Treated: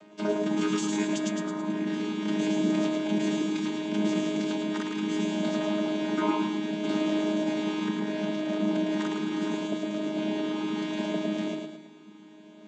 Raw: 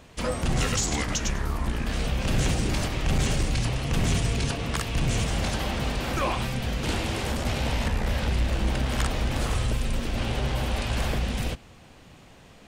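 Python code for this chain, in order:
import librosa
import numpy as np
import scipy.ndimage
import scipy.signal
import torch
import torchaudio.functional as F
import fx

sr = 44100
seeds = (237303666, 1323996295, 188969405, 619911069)

y = fx.chord_vocoder(x, sr, chord='bare fifth', root=56)
y = fx.echo_feedback(y, sr, ms=109, feedback_pct=47, wet_db=-4)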